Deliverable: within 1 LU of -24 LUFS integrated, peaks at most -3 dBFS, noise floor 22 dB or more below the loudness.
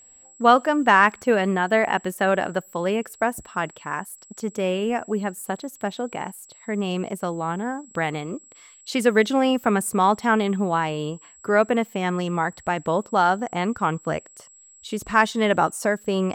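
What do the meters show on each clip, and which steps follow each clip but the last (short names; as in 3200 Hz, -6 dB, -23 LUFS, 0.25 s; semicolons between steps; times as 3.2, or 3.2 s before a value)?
steady tone 7700 Hz; tone level -48 dBFS; loudness -23.0 LUFS; peak -3.0 dBFS; loudness target -24.0 LUFS
-> notch 7700 Hz, Q 30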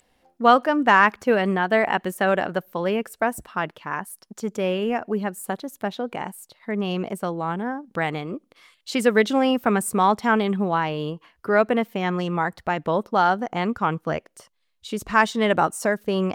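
steady tone none; loudness -23.0 LUFS; peak -3.0 dBFS; loudness target -24.0 LUFS
-> gain -1 dB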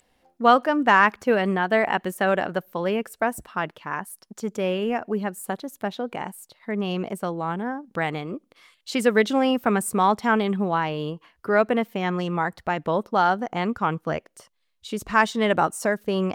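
loudness -24.0 LUFS; peak -4.0 dBFS; noise floor -70 dBFS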